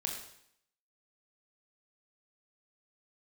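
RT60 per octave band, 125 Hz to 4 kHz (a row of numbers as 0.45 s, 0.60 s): 0.70 s, 0.70 s, 0.70 s, 0.70 s, 0.70 s, 0.70 s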